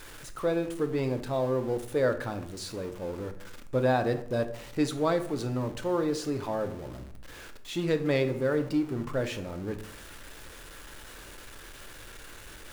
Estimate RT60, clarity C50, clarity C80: 0.65 s, 12.5 dB, 16.5 dB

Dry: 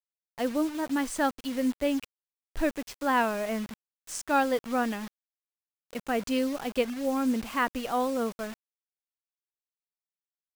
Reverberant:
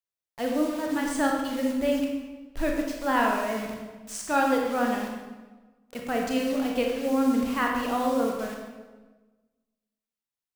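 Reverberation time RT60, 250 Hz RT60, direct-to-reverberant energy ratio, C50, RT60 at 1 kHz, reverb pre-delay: 1.3 s, 1.5 s, 0.0 dB, 2.0 dB, 1.2 s, 25 ms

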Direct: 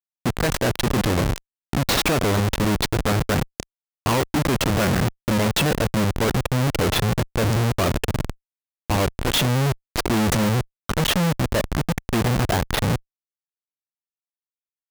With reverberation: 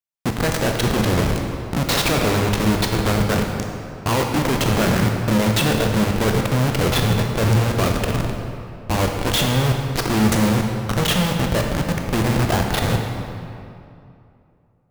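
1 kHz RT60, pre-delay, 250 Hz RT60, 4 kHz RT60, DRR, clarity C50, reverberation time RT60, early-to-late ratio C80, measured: 2.6 s, 18 ms, 2.8 s, 1.7 s, 2.0 dB, 3.0 dB, 2.6 s, 4.0 dB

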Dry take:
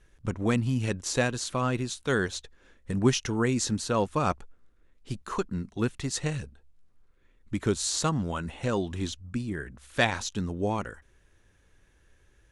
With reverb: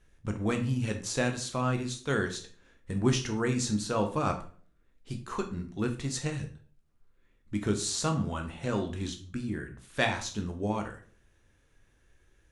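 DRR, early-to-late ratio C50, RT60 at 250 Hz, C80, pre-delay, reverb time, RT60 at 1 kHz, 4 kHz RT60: 4.0 dB, 10.5 dB, 0.55 s, 15.0 dB, 12 ms, 0.45 s, 0.40 s, 0.35 s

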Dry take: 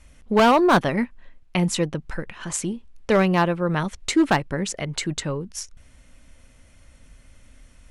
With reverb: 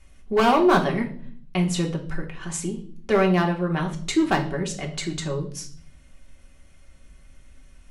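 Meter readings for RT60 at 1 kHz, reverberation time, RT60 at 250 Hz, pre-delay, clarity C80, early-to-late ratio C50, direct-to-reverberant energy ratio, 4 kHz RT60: 0.45 s, 0.50 s, 0.90 s, 3 ms, 15.5 dB, 11.5 dB, 0.0 dB, 0.50 s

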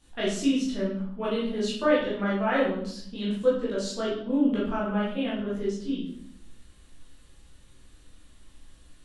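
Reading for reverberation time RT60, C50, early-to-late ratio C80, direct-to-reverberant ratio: 0.65 s, 2.5 dB, 7.0 dB, -8.0 dB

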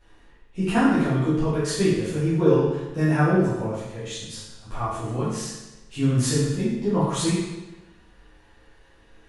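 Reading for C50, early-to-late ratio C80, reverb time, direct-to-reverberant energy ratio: -0.5 dB, 2.5 dB, 1.1 s, -11.5 dB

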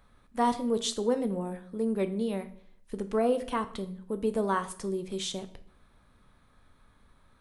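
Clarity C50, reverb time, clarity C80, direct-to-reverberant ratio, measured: 14.5 dB, 0.60 s, 18.0 dB, 9.5 dB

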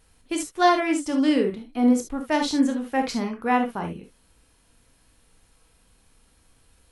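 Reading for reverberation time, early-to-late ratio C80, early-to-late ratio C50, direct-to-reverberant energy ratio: no single decay rate, 25.5 dB, 8.5 dB, 3.5 dB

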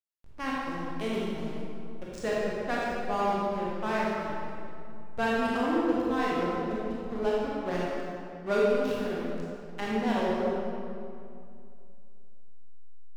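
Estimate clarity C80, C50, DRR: -1.5 dB, -4.5 dB, -6.5 dB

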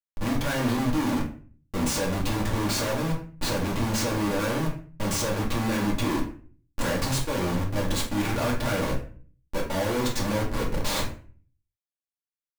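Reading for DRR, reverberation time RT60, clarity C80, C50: -3.5 dB, 0.45 s, 12.5 dB, 8.0 dB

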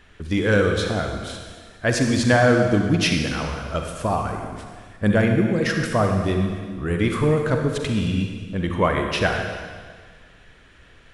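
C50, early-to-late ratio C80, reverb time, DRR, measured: 3.5 dB, 5.5 dB, 1.7 s, 3.0 dB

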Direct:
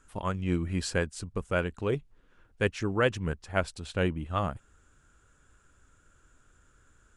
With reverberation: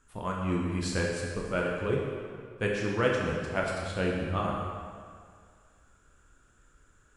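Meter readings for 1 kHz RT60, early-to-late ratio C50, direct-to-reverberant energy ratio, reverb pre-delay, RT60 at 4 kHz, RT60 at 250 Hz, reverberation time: 2.1 s, 0.5 dB, -2.5 dB, 10 ms, 1.6 s, 1.9 s, 2.1 s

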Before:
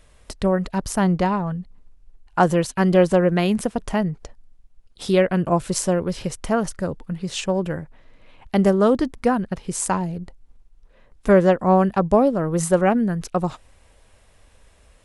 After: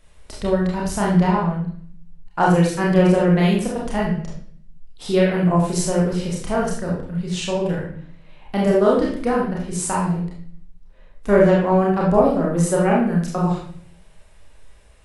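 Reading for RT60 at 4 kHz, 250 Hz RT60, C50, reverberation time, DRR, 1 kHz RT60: 0.50 s, 0.80 s, 2.0 dB, 0.55 s, -4.5 dB, 0.50 s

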